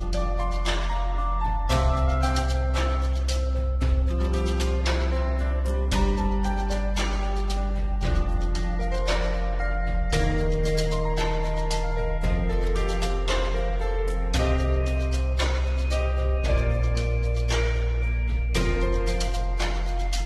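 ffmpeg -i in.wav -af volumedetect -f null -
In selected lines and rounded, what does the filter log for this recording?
mean_volume: -23.1 dB
max_volume: -11.4 dB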